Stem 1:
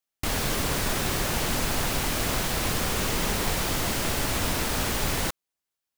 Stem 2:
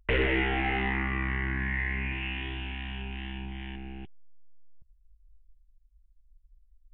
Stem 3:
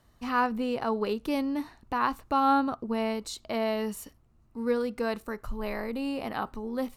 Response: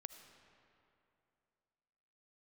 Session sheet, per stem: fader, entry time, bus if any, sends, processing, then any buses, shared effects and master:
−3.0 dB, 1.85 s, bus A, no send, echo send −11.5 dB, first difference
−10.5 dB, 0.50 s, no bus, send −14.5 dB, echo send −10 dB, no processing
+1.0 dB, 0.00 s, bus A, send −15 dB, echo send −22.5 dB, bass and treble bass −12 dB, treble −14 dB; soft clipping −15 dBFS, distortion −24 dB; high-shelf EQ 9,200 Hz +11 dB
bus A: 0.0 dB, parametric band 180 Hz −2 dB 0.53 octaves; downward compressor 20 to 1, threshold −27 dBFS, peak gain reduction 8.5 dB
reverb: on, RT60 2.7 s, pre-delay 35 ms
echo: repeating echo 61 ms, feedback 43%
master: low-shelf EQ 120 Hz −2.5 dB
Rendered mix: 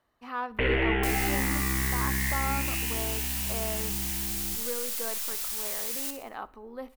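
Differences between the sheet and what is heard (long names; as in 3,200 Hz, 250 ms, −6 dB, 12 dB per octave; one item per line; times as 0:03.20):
stem 1: entry 1.85 s → 0.80 s
stem 2 −10.5 dB → −1.0 dB
stem 3 +1.0 dB → −6.0 dB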